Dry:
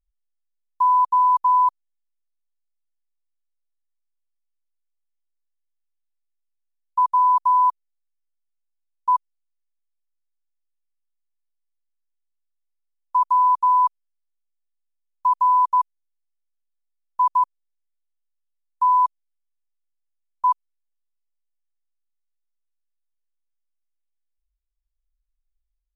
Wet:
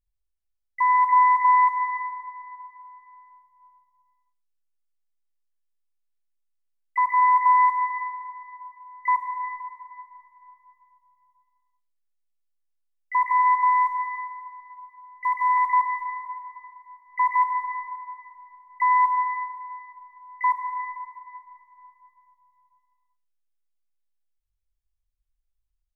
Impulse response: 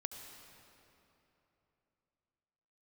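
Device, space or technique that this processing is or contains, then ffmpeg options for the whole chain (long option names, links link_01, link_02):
shimmer-style reverb: -filter_complex "[0:a]asettb=1/sr,asplit=3[link_01][link_02][link_03];[link_01]atrim=end=13.324[link_04];[link_02]atrim=start=13.32:end=15.58,asetpts=PTS-STARTPTS,afade=type=in:duration=0.004:curve=qsin,afade=type=out:start_time=2.256:duration=0.004:curve=qsin,bandreject=frequency=930:width=7.8[link_05];[link_03]atrim=start=15.576[link_06];[link_04][link_05]acrossfade=duration=0.004:curve1=hsin:curve2=qsin[link_07];[link_07][link_06]acrossfade=duration=0.004:curve1=qsin:curve2=hsin,asplit=2[link_08][link_09];[link_09]asetrate=88200,aresample=44100,atempo=0.5,volume=-12dB[link_10];[link_08][link_10]amix=inputs=2:normalize=0[link_11];[1:a]atrim=start_sample=2205[link_12];[link_11][link_12]afir=irnorm=-1:irlink=0"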